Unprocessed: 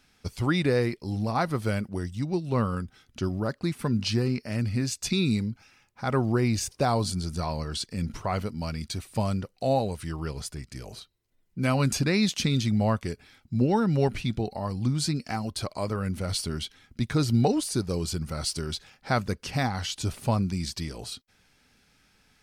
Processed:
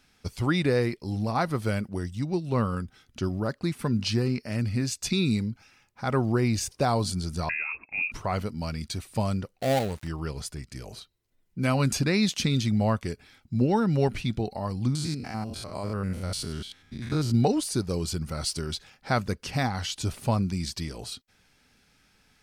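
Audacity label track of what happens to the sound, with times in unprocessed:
7.490000	8.120000	inverted band carrier 2600 Hz
9.580000	10.080000	switching dead time of 0.2 ms
14.950000	17.340000	stepped spectrum every 0.1 s

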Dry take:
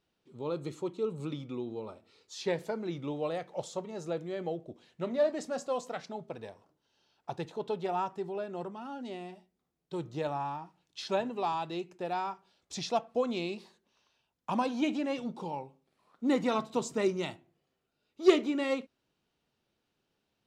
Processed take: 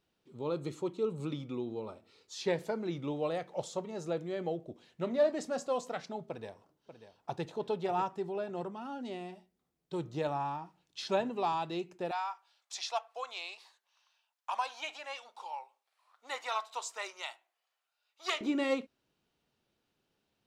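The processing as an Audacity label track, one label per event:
6.270000	7.440000	echo throw 0.59 s, feedback 30%, level -11.5 dB
12.110000	18.410000	HPF 770 Hz 24 dB/oct

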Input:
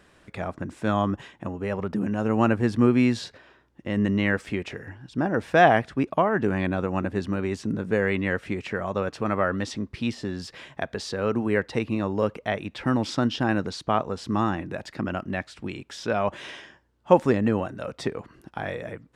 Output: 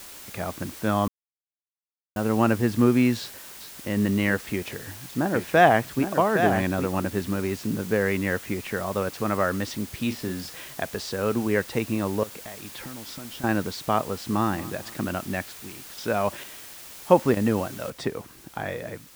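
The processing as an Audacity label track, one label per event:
1.080000	2.160000	mute
3.190000	3.930000	echo throw 0.41 s, feedback 20%, level -10 dB
4.530000	7.000000	echo 0.814 s -7 dB
7.990000	8.670000	bell 4900 Hz -12.5 dB 0.49 oct
9.970000	10.740000	doubler 37 ms -10 dB
12.230000	13.440000	compressor 10:1, threshold -36 dBFS
14.050000	14.470000	echo throw 0.23 s, feedback 40%, level -17.5 dB
15.070000	17.370000	chopper 1.1 Hz, depth 65%
17.900000	17.900000	noise floor step -43 dB -51 dB

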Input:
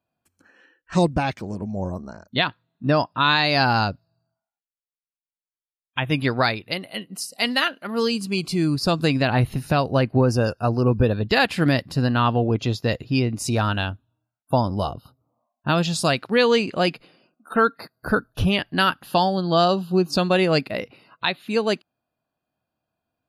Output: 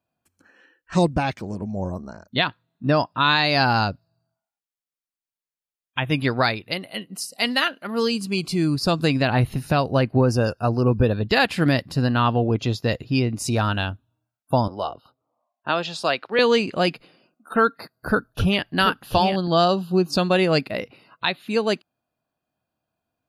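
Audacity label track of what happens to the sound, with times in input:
14.680000	16.390000	three-band isolator lows -16 dB, under 340 Hz, highs -15 dB, over 4800 Hz
17.660000	19.480000	echo 0.734 s -7 dB

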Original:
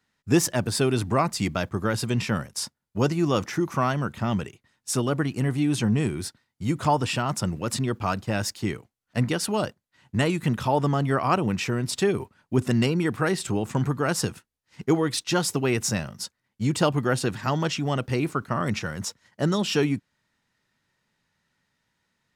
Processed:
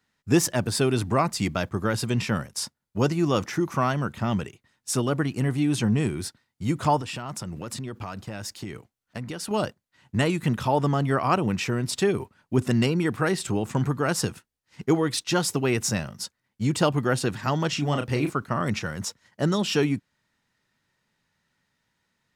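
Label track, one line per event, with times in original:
7.000000	9.510000	compressor, threshold -30 dBFS
17.690000	18.300000	doubler 34 ms -7 dB

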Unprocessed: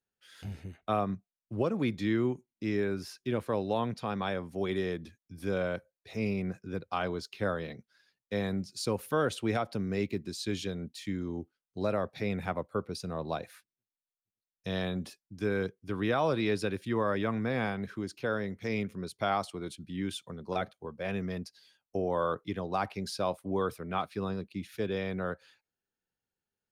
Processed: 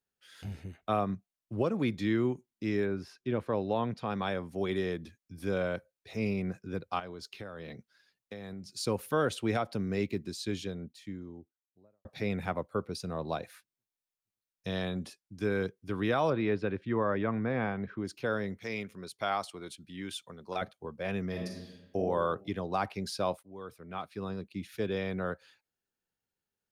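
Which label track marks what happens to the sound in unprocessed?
2.850000	4.100000	LPF 1800 Hz -> 3800 Hz 6 dB/oct
6.990000	8.710000	compressor 12:1, threshold -38 dBFS
10.150000	12.050000	studio fade out
14.700000	15.390000	Chebyshev low-pass 11000 Hz
16.300000	18.050000	LPF 2200 Hz
18.580000	20.620000	low shelf 420 Hz -9 dB
21.290000	21.980000	reverb throw, RT60 1.1 s, DRR -0.5 dB
23.430000	24.710000	fade in, from -22.5 dB

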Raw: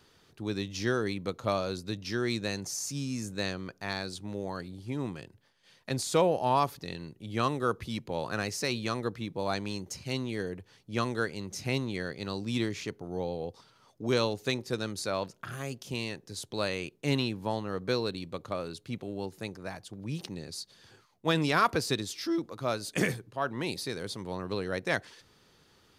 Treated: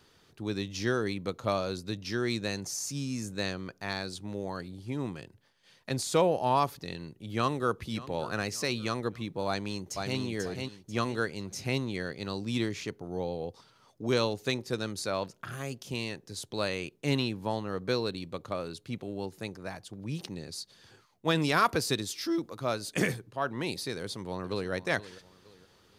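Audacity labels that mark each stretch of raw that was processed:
6.710000	7.840000	echo throw 0.58 s, feedback 45%, level -18 dB
9.470000	10.190000	echo throw 0.49 s, feedback 30%, level -4 dB
21.390000	22.600000	high shelf 8200 Hz +5.5 dB
23.960000	24.710000	echo throw 0.47 s, feedback 35%, level -15.5 dB

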